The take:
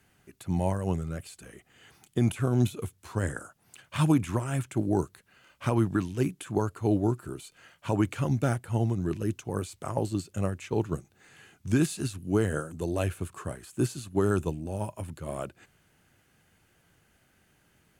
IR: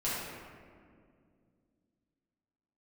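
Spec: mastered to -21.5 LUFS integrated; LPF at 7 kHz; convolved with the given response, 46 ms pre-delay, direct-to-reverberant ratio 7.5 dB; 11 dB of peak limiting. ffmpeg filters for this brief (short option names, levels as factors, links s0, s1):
-filter_complex "[0:a]lowpass=7000,alimiter=level_in=1.06:limit=0.0631:level=0:latency=1,volume=0.944,asplit=2[s0][s1];[1:a]atrim=start_sample=2205,adelay=46[s2];[s1][s2]afir=irnorm=-1:irlink=0,volume=0.188[s3];[s0][s3]amix=inputs=2:normalize=0,volume=5.01"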